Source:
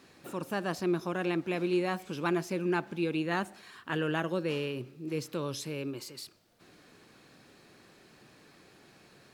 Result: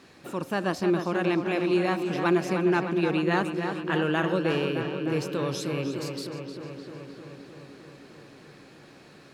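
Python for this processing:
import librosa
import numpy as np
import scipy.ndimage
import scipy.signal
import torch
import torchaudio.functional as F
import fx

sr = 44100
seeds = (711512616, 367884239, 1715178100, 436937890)

y = fx.high_shelf(x, sr, hz=11000.0, db=-10.0)
y = fx.echo_filtered(y, sr, ms=306, feedback_pct=75, hz=4500.0, wet_db=-7)
y = F.gain(torch.from_numpy(y), 5.0).numpy()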